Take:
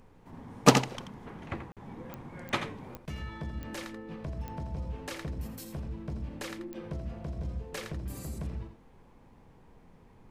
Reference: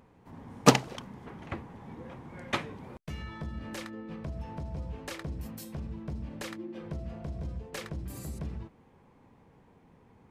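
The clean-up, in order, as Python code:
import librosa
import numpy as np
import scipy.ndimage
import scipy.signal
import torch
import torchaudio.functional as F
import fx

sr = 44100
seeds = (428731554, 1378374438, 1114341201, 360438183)

y = fx.fix_declick_ar(x, sr, threshold=10.0)
y = fx.fix_interpolate(y, sr, at_s=(1.72,), length_ms=47.0)
y = fx.noise_reduce(y, sr, print_start_s=8.76, print_end_s=9.26, reduce_db=6.0)
y = fx.fix_echo_inverse(y, sr, delay_ms=84, level_db=-9.5)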